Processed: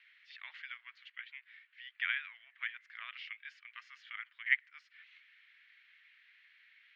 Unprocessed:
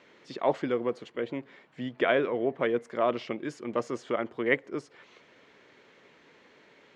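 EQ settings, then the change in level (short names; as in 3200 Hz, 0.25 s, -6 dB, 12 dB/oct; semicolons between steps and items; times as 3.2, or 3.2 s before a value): steep high-pass 1800 Hz 36 dB/oct; air absorption 310 m; high shelf 6100 Hz -9.5 dB; +4.5 dB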